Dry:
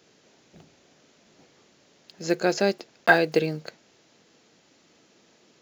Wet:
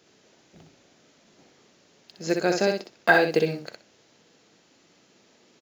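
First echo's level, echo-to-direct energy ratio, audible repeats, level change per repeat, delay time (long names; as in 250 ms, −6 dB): −5.0 dB, −5.0 dB, 2, −16.5 dB, 62 ms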